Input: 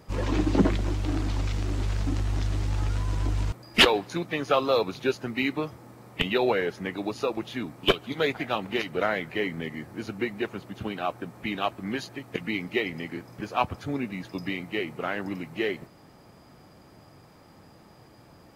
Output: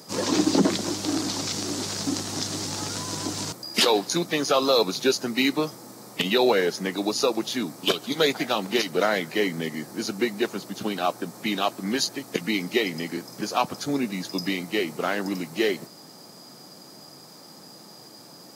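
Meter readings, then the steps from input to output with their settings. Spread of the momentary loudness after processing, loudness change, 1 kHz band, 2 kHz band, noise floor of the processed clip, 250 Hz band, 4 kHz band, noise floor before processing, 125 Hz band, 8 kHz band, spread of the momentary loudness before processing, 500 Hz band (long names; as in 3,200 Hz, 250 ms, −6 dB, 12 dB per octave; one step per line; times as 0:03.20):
23 LU, +3.0 dB, +2.5 dB, +1.0 dB, −47 dBFS, +4.0 dB, +4.0 dB, −53 dBFS, −5.5 dB, +15.0 dB, 11 LU, +3.5 dB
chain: high-pass filter 160 Hz 24 dB per octave
high shelf with overshoot 3,600 Hz +10.5 dB, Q 1.5
boost into a limiter +13.5 dB
level −8.5 dB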